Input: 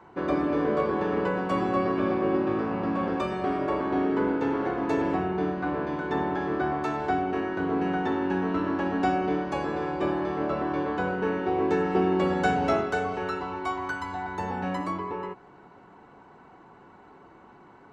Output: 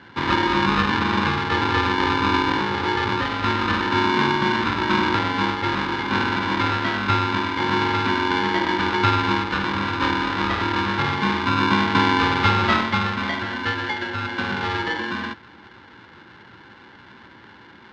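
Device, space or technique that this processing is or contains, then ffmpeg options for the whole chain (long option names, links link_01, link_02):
ring modulator pedal into a guitar cabinet: -filter_complex "[0:a]asettb=1/sr,asplit=3[link_01][link_02][link_03];[link_01]atrim=end=1.304[link_04];[link_02]atrim=start=1.3:end=3.26,asetpts=PTS-STARTPTS,afade=type=in:duration=0.004:curve=qsin,afade=type=out:start_time=1.956:duration=0.004:curve=qsin,lowpass=1300[link_05];[link_03]atrim=start=3.256[link_06];[link_04][link_05]acrossfade=duration=0.004:curve1=hsin:curve2=qsin[link_07];[link_07][link_06]acrossfade=duration=0.004:curve1=qsin:curve2=hsin,aeval=exprs='val(0)*sgn(sin(2*PI*640*n/s))':channel_layout=same,highpass=94,equalizer=frequency=270:width_type=q:width=4:gain=-4,equalizer=frequency=460:width_type=q:width=4:gain=-9,equalizer=frequency=700:width_type=q:width=4:gain=-8,equalizer=frequency=1100:width_type=q:width=4:gain=-4,equalizer=frequency=2500:width_type=q:width=4:gain=-6,lowpass=frequency=3900:width=0.5412,lowpass=frequency=3900:width=1.3066,volume=9dB"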